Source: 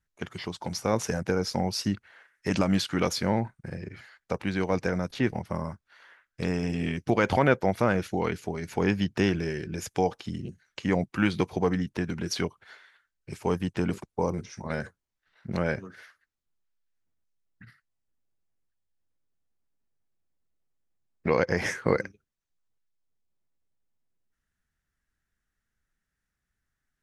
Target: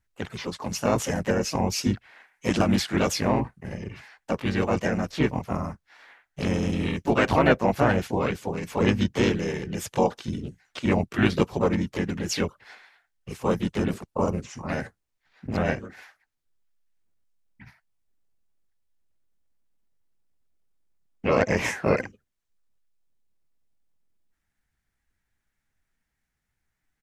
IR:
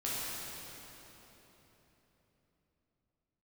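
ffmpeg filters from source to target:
-filter_complex "[0:a]asplit=4[link_01][link_02][link_03][link_04];[link_02]asetrate=22050,aresample=44100,atempo=2,volume=-8dB[link_05];[link_03]asetrate=52444,aresample=44100,atempo=0.840896,volume=-2dB[link_06];[link_04]asetrate=55563,aresample=44100,atempo=0.793701,volume=-9dB[link_07];[link_01][link_05][link_06][link_07]amix=inputs=4:normalize=0"

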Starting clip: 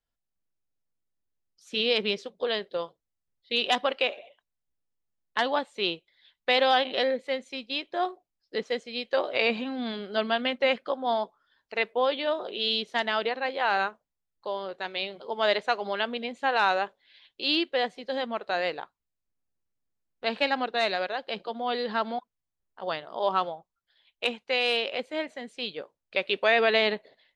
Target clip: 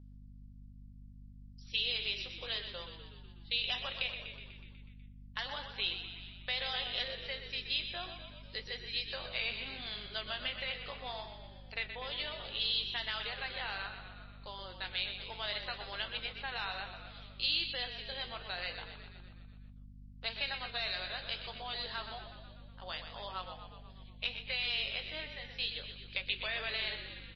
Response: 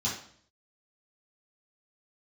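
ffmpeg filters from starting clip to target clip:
-filter_complex "[0:a]bandreject=frequency=5400:width=19,asplit=2[link_01][link_02];[link_02]alimiter=limit=-17.5dB:level=0:latency=1:release=43,volume=2dB[link_03];[link_01][link_03]amix=inputs=2:normalize=0,acompressor=threshold=-22dB:ratio=3,flanger=delay=9.1:depth=8.3:regen=-64:speed=0.69:shape=sinusoidal,bandpass=frequency=6000:width_type=q:width=0.68:csg=0,aeval=exprs='val(0)+0.00282*(sin(2*PI*50*n/s)+sin(2*PI*2*50*n/s)/2+sin(2*PI*3*50*n/s)/3+sin(2*PI*4*50*n/s)/4+sin(2*PI*5*50*n/s)/5)':channel_layout=same,asplit=2[link_04][link_05];[link_05]asplit=8[link_06][link_07][link_08][link_09][link_10][link_11][link_12][link_13];[link_06]adelay=123,afreqshift=-35,volume=-9dB[link_14];[link_07]adelay=246,afreqshift=-70,volume=-12.9dB[link_15];[link_08]adelay=369,afreqshift=-105,volume=-16.8dB[link_16];[link_09]adelay=492,afreqshift=-140,volume=-20.6dB[link_17];[link_10]adelay=615,afreqshift=-175,volume=-24.5dB[link_18];[link_11]adelay=738,afreqshift=-210,volume=-28.4dB[link_19];[link_12]adelay=861,afreqshift=-245,volume=-32.3dB[link_20];[link_13]adelay=984,afreqshift=-280,volume=-36.1dB[link_21];[link_14][link_15][link_16][link_17][link_18][link_19][link_20][link_21]amix=inputs=8:normalize=0[link_22];[link_04][link_22]amix=inputs=2:normalize=0" -ar 16000 -c:a libmp3lame -b:a 24k

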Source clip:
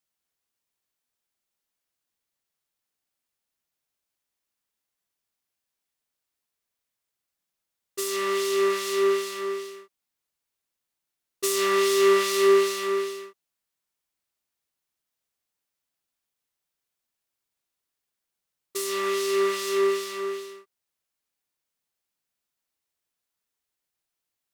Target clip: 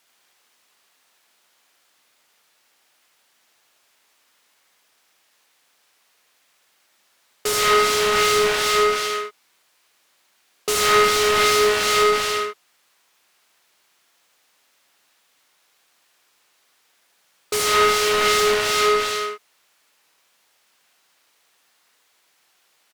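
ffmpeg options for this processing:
ffmpeg -i in.wav -filter_complex "[0:a]asplit=2[link_01][link_02];[link_02]highpass=frequency=720:poles=1,volume=33dB,asoftclip=type=tanh:threshold=-10.5dB[link_03];[link_01][link_03]amix=inputs=2:normalize=0,lowpass=frequency=3200:poles=1,volume=-6dB,aecho=1:1:80:0.596,asetrate=47187,aresample=44100" out.wav

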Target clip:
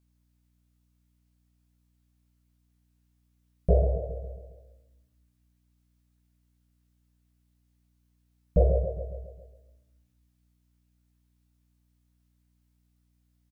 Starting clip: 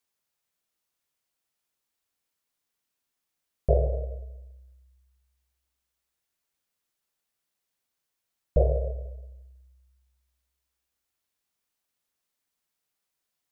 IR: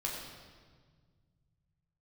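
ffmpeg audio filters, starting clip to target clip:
-filter_complex "[0:a]equalizer=frequency=180:width_type=o:width=0.39:gain=14,asplit=2[link_01][link_02];[link_02]adelay=17,volume=-3dB[link_03];[link_01][link_03]amix=inputs=2:normalize=0,asplit=2[link_04][link_05];[link_05]aecho=0:1:136|272|408|544|680|816:0.316|0.177|0.0992|0.0555|0.0311|0.0174[link_06];[link_04][link_06]amix=inputs=2:normalize=0,aeval=exprs='val(0)+0.000562*(sin(2*PI*60*n/s)+sin(2*PI*2*60*n/s)/2+sin(2*PI*3*60*n/s)/3+sin(2*PI*4*60*n/s)/4+sin(2*PI*5*60*n/s)/5)':channel_layout=same,volume=-3dB"

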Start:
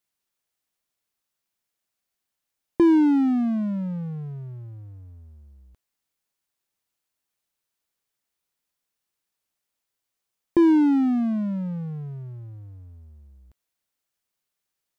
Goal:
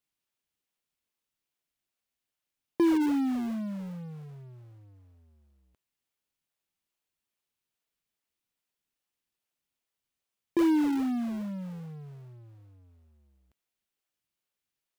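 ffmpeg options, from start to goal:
ffmpeg -i in.wav -filter_complex "[0:a]highpass=frequency=250:poles=1,equalizer=frequency=2800:width=1.5:gain=4.5,asplit=2[link_01][link_02];[link_02]acrusher=samples=42:mix=1:aa=0.000001:lfo=1:lforange=67.2:lforate=2.4,volume=-12dB[link_03];[link_01][link_03]amix=inputs=2:normalize=0,volume=-6.5dB" out.wav

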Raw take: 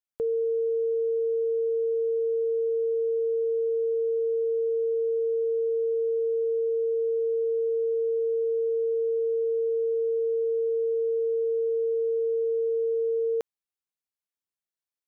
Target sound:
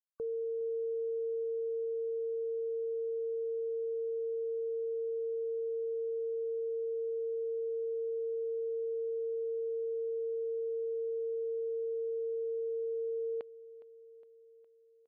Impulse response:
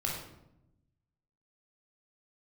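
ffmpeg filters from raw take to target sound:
-filter_complex "[0:a]afftfilt=real='re*gte(hypot(re,im),0.00355)':imag='im*gte(hypot(re,im),0.00355)':win_size=1024:overlap=0.75,alimiter=level_in=8.5dB:limit=-24dB:level=0:latency=1,volume=-8.5dB,asplit=2[link_01][link_02];[link_02]aecho=0:1:412|824|1236|1648|2060:0.119|0.0701|0.0414|0.0244|0.0144[link_03];[link_01][link_03]amix=inputs=2:normalize=0"

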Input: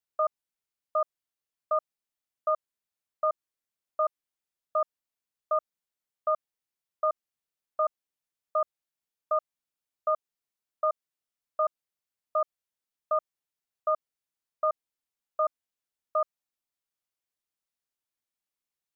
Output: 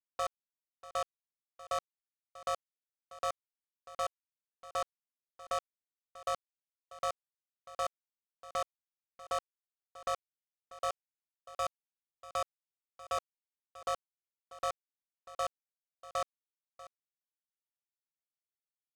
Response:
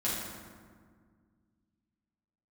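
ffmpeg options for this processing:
-filter_complex "[0:a]asettb=1/sr,asplit=3[link_01][link_02][link_03];[link_01]atrim=end=10.904[link_04];[link_02]atrim=start=10.9:end=13.18,asetpts=PTS-STARTPTS,afade=type=in:duration=0.004:curve=qsin,afade=type=out:start_time=2.276:duration=0.004:curve=qsin,highpass=510[link_05];[link_03]atrim=start=13.176[link_06];[link_04][link_05]acrossfade=duration=0.004:curve1=hsin:curve2=qsin[link_07];[link_07][link_06]acrossfade=duration=0.004:curve1=qsin:curve2=hsin,alimiter=level_in=2.5dB:limit=-24dB:level=0:latency=1:release=383,volume=-2.5dB,asoftclip=type=hard:threshold=-28dB,acrusher=bits=5:mix=0:aa=0.5,aeval=exprs='val(0)*sin(2*PI*83*n/s)':channel_layout=same,aecho=1:1:641:0.141,volume=4dB"

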